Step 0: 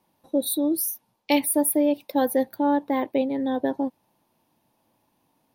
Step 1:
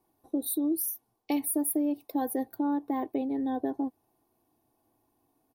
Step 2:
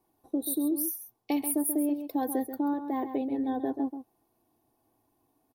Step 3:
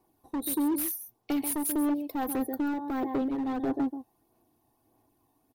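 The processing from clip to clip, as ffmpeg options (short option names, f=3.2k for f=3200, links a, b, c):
-af "equalizer=f=2.9k:w=0.55:g=-11,aecho=1:1:2.7:0.66,acompressor=threshold=-25dB:ratio=2,volume=-3dB"
-filter_complex "[0:a]asplit=2[a][b];[b]adelay=134.1,volume=-9dB,highshelf=f=4k:g=-3.02[c];[a][c]amix=inputs=2:normalize=0"
-af "volume=28.5dB,asoftclip=hard,volume=-28.5dB,aphaser=in_gain=1:out_gain=1:delay=1.1:decay=0.3:speed=1.6:type=sinusoidal,volume=1.5dB"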